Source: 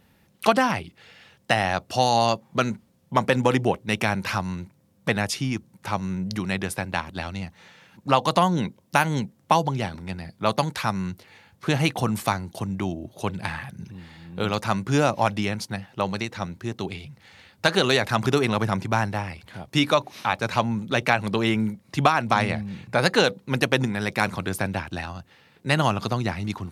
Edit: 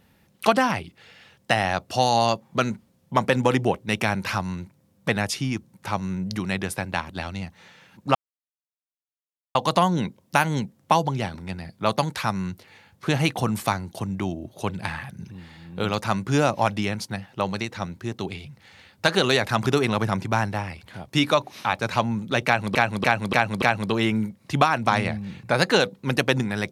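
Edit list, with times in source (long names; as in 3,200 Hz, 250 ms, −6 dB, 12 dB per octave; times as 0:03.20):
0:08.15: splice in silence 1.40 s
0:21.06–0:21.35: repeat, 5 plays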